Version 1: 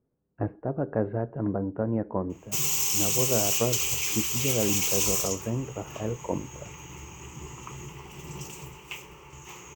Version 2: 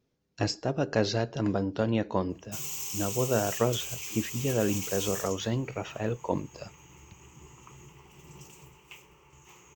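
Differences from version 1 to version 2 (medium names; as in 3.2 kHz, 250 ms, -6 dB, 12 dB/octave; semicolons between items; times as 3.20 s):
speech: remove Bessel low-pass 1 kHz, order 8; background -10.0 dB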